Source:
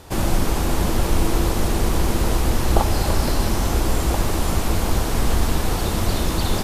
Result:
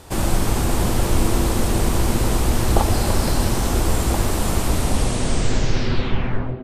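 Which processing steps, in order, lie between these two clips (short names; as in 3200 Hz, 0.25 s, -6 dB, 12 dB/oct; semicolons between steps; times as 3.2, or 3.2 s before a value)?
tape stop at the end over 2.04 s; bell 8400 Hz +5 dB 0.33 oct; frequency-shifting echo 0.119 s, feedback 56%, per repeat -130 Hz, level -11 dB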